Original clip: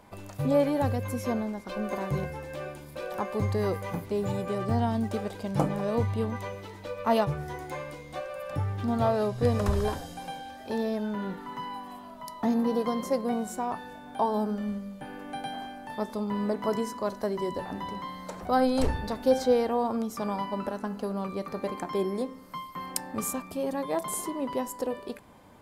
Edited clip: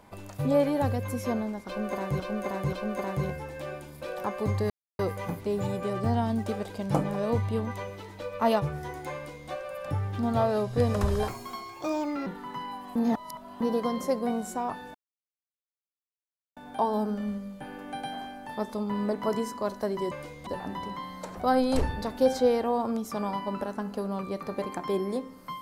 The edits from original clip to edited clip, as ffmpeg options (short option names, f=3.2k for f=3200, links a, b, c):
-filter_complex "[0:a]asplit=11[a][b][c][d][e][f][g][h][i][j][k];[a]atrim=end=2.202[l];[b]atrim=start=1.668:end=2.202[m];[c]atrim=start=1.668:end=3.64,asetpts=PTS-STARTPTS,afade=t=out:st=1.968:d=0.004:c=hsin,apad=pad_dur=0.29[n];[d]atrim=start=3.64:end=9.934,asetpts=PTS-STARTPTS,afade=t=in:d=0.004:c=hsin[o];[e]atrim=start=9.93:end=11.29,asetpts=PTS-STARTPTS,asetrate=60858,aresample=44100[p];[f]atrim=start=11.286:end=11.982[q];[g]atrim=start=11.978:end=12.632,asetpts=PTS-STARTPTS,areverse[r];[h]atrim=start=12.628:end=13.97,asetpts=PTS-STARTPTS,afade=t=out:st=1.338:d=0.004:c=hsin,apad=pad_dur=1.62[s];[i]atrim=start=13.97:end=17.522,asetpts=PTS-STARTPTS,afade=t=in:d=0.004:c=hsin[t];[j]atrim=start=7.798:end=8.152[u];[k]atrim=start=17.518[v];[l][m]acrossfade=d=0.004:c1=hsin:c2=hsin[w];[n][o]concat=n=2:v=0:a=1[x];[w][x]acrossfade=d=0.004:c1=hsin:c2=hsin[y];[y][p]acrossfade=d=0.004:c1=hsin:c2=hsin[z];[z][q]acrossfade=d=0.004:c1=hsin:c2=hsin[aa];[aa][r]acrossfade=d=0.004:c1=hsin:c2=hsin[ab];[s][t]concat=n=2:v=0:a=1[ac];[ab][ac]acrossfade=d=0.004:c1=hsin:c2=hsin[ad];[ad][u]acrossfade=d=0.004:c1=hsin:c2=hsin[ae];[ae][v]acrossfade=d=0.004:c1=hsin:c2=hsin"